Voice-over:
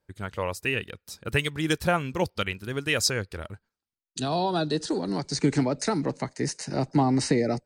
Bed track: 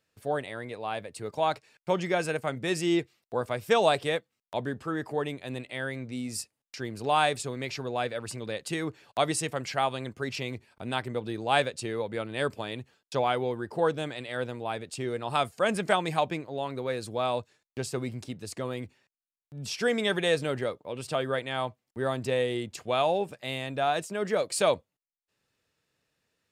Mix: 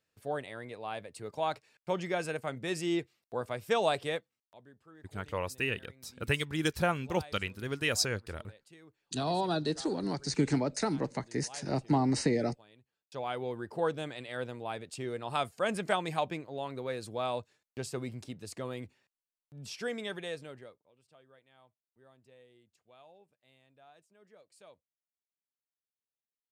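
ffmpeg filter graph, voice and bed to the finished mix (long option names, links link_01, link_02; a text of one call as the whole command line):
ffmpeg -i stem1.wav -i stem2.wav -filter_complex "[0:a]adelay=4950,volume=-5dB[link_01];[1:a]volume=14dB,afade=type=out:start_time=4.27:duration=0.28:silence=0.112202,afade=type=in:start_time=12.92:duration=0.66:silence=0.105925,afade=type=out:start_time=19.09:duration=1.83:silence=0.0446684[link_02];[link_01][link_02]amix=inputs=2:normalize=0" out.wav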